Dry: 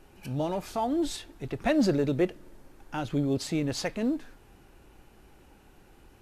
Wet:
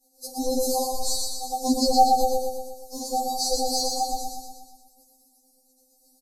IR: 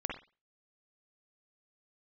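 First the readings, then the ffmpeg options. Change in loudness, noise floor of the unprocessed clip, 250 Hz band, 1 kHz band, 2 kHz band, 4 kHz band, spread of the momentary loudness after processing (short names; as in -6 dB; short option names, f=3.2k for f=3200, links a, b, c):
+5.0 dB, -57 dBFS, -2.0 dB, +14.0 dB, under -40 dB, +11.5 dB, 17 LU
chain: -filter_complex "[0:a]acrossover=split=3500[a][b];[b]acompressor=threshold=-49dB:ratio=4:attack=1:release=60[c];[a][c]amix=inputs=2:normalize=0,aemphasis=mode=production:type=cd,agate=range=-33dB:threshold=-43dB:ratio=3:detection=peak,aeval=exprs='val(0)*sin(2*PI*340*n/s)':c=same,acrossover=split=470|1100[d][e][f];[f]aeval=exprs='0.0944*sin(PI/2*2.82*val(0)/0.0944)':c=same[g];[d][e][g]amix=inputs=3:normalize=0,asuperstop=centerf=1900:order=20:qfactor=0.56,aecho=1:1:120|240|360|480|600|720|840|960:0.668|0.368|0.202|0.111|0.0612|0.0336|0.0185|0.0102,asplit=2[h][i];[1:a]atrim=start_sample=2205,asetrate=29106,aresample=44100[j];[i][j]afir=irnorm=-1:irlink=0,volume=-11.5dB[k];[h][k]amix=inputs=2:normalize=0,afftfilt=real='re*3.46*eq(mod(b,12),0)':imag='im*3.46*eq(mod(b,12),0)':win_size=2048:overlap=0.75,volume=6.5dB"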